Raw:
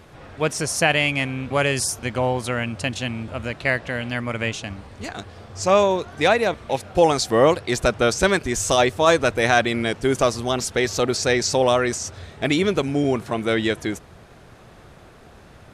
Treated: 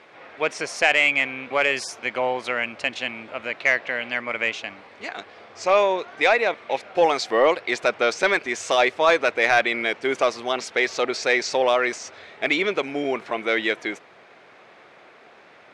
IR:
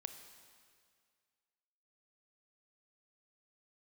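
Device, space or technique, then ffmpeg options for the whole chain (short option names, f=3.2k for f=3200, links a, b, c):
intercom: -af "highpass=410,lowpass=4.3k,equalizer=f=2.2k:t=o:w=0.45:g=7,asoftclip=type=tanh:threshold=-6dB"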